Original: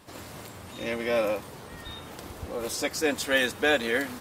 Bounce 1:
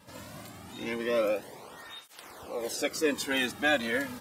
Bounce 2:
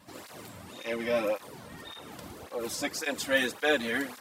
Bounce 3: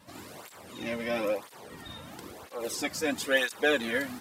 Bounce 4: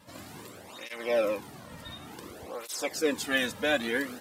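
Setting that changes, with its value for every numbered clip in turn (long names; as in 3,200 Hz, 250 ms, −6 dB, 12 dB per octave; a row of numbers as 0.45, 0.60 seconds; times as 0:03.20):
through-zero flanger with one copy inverted, nulls at: 0.24, 1.8, 1, 0.56 Hertz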